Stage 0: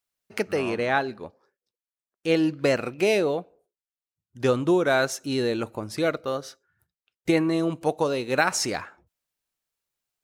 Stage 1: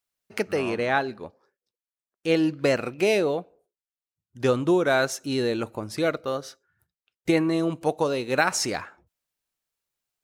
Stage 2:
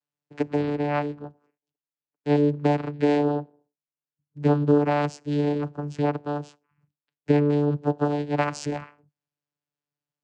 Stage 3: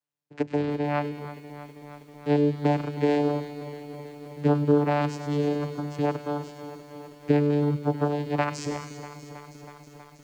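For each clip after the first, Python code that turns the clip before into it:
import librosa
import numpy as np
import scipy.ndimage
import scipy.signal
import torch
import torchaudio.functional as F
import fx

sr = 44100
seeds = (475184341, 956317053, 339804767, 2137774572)

y1 = x
y2 = fx.vocoder(y1, sr, bands=8, carrier='saw', carrier_hz=146.0)
y2 = y2 * 10.0 ** (1.5 / 20.0)
y3 = fx.echo_wet_highpass(y2, sr, ms=100, feedback_pct=73, hz=2900.0, wet_db=-8)
y3 = fx.echo_crushed(y3, sr, ms=321, feedback_pct=80, bits=8, wet_db=-14.0)
y3 = y3 * 10.0 ** (-1.5 / 20.0)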